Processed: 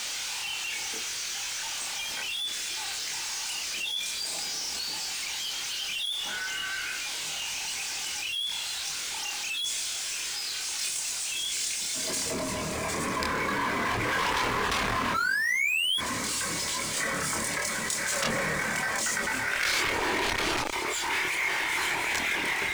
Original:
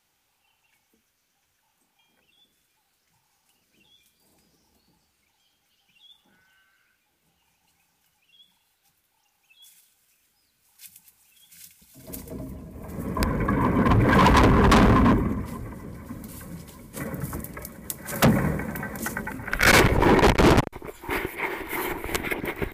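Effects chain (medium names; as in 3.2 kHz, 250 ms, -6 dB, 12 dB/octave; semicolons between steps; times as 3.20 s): Bessel low-pass 5 kHz, order 8; differentiator; painted sound rise, 15.14–15.98 s, 1.3–3.4 kHz -33 dBFS; power-law waveshaper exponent 0.5; chorus voices 4, 0.13 Hz, delay 26 ms, depth 1.7 ms; level flattener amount 70%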